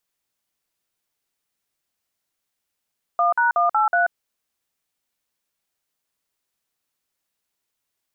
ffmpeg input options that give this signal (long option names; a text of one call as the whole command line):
ffmpeg -f lavfi -i "aevalsrc='0.126*clip(min(mod(t,0.185),0.135-mod(t,0.185))/0.002,0,1)*(eq(floor(t/0.185),0)*(sin(2*PI*697*mod(t,0.185))+sin(2*PI*1209*mod(t,0.185)))+eq(floor(t/0.185),1)*(sin(2*PI*941*mod(t,0.185))+sin(2*PI*1477*mod(t,0.185)))+eq(floor(t/0.185),2)*(sin(2*PI*697*mod(t,0.185))+sin(2*PI*1209*mod(t,0.185)))+eq(floor(t/0.185),3)*(sin(2*PI*852*mod(t,0.185))+sin(2*PI*1336*mod(t,0.185)))+eq(floor(t/0.185),4)*(sin(2*PI*697*mod(t,0.185))+sin(2*PI*1477*mod(t,0.185))))':duration=0.925:sample_rate=44100" out.wav